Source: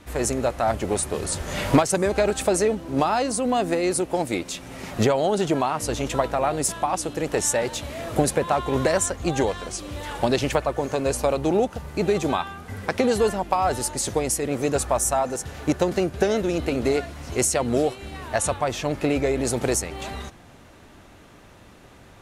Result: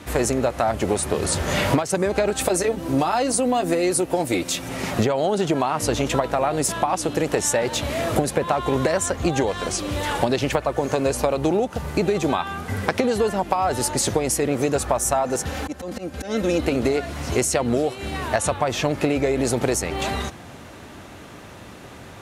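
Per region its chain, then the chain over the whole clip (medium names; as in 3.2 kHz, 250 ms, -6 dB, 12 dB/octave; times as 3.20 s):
2.38–4.69 s: treble shelf 8.4 kHz +9 dB + comb of notches 210 Hz
15.46–16.61 s: slow attack 378 ms + comb 3.8 ms
whole clip: high-pass 66 Hz; dynamic bell 8.8 kHz, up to -4 dB, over -39 dBFS, Q 0.78; compression 6:1, threshold -26 dBFS; trim +8.5 dB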